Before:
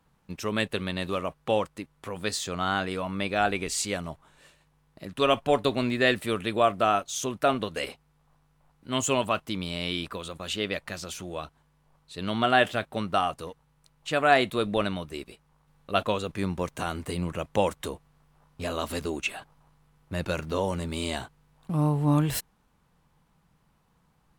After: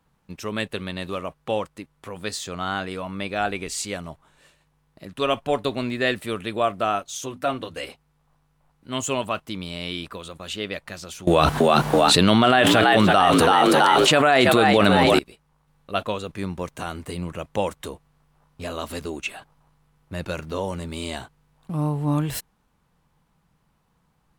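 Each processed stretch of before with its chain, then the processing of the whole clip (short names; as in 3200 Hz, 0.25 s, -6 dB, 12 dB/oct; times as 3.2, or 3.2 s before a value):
7.17–7.89 notches 50/100/150/200/250 Hz + notch comb 210 Hz
11.27–15.19 HPF 83 Hz + frequency-shifting echo 0.33 s, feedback 45%, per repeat +65 Hz, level -9.5 dB + fast leveller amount 100%
whole clip: dry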